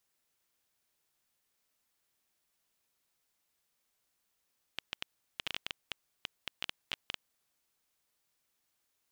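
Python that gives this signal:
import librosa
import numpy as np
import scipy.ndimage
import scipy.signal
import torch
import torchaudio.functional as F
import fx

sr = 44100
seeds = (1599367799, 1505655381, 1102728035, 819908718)

y = fx.geiger_clicks(sr, seeds[0], length_s=3.01, per_s=7.4, level_db=-17.5)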